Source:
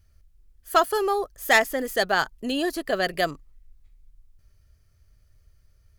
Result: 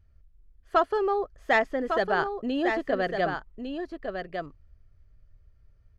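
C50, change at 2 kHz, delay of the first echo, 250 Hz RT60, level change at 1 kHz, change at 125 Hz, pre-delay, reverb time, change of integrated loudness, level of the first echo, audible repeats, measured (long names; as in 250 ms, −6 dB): no reverb audible, −4.5 dB, 1,153 ms, no reverb audible, −2.0 dB, +0.5 dB, no reverb audible, no reverb audible, −4.0 dB, −6.5 dB, 1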